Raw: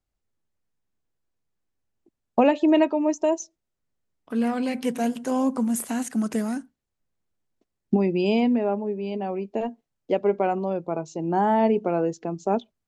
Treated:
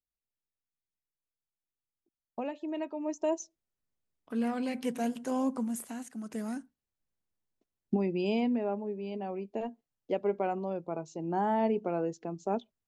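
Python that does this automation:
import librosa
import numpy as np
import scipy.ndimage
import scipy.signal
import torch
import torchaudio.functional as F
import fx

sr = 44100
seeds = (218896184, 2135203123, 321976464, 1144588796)

y = fx.gain(x, sr, db=fx.line((2.74, -18.0), (3.31, -7.0), (5.49, -7.0), (6.2, -16.0), (6.49, -8.0)))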